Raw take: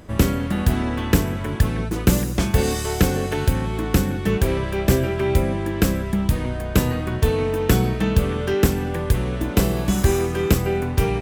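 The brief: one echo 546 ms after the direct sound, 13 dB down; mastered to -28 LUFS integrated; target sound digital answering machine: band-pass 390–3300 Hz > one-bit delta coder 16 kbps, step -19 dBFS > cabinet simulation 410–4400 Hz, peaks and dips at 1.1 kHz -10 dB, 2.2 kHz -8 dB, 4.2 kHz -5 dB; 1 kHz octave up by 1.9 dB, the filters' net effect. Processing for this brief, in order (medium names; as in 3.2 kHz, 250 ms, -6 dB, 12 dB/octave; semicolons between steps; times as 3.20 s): band-pass 390–3300 Hz; peaking EQ 1 kHz +7.5 dB; delay 546 ms -13 dB; one-bit delta coder 16 kbps, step -19 dBFS; cabinet simulation 410–4400 Hz, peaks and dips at 1.1 kHz -10 dB, 2.2 kHz -8 dB, 4.2 kHz -5 dB; trim -0.5 dB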